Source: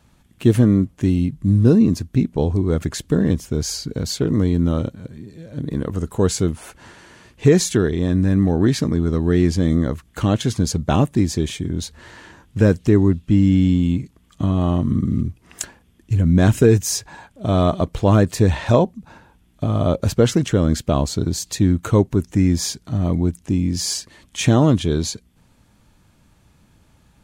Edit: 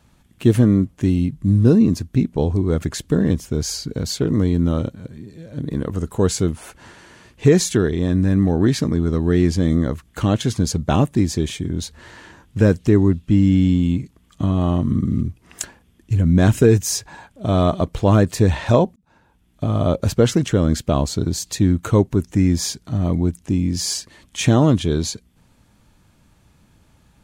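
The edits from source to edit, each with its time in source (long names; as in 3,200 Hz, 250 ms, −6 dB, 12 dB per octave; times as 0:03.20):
0:18.96–0:19.68: fade in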